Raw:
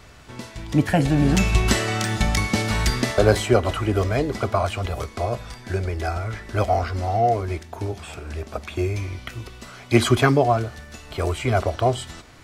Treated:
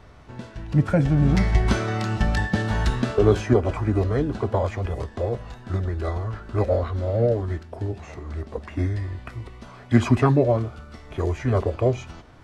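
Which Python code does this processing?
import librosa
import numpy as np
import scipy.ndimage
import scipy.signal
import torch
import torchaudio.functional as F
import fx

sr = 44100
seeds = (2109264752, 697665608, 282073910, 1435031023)

y = fx.high_shelf(x, sr, hz=2400.0, db=-11.0)
y = fx.formant_shift(y, sr, semitones=-4)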